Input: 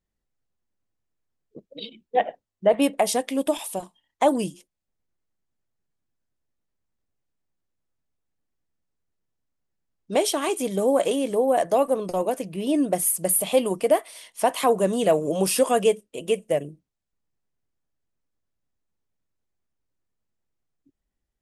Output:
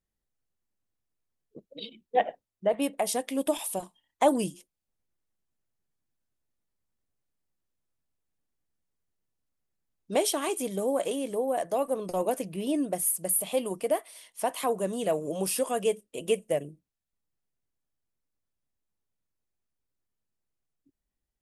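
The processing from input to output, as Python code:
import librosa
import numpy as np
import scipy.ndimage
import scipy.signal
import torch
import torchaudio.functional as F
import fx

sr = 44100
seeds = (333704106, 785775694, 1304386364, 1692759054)

y = fx.rider(x, sr, range_db=10, speed_s=0.5)
y = fx.peak_eq(y, sr, hz=11000.0, db=4.5, octaves=0.77)
y = F.gain(torch.from_numpy(y), -6.5).numpy()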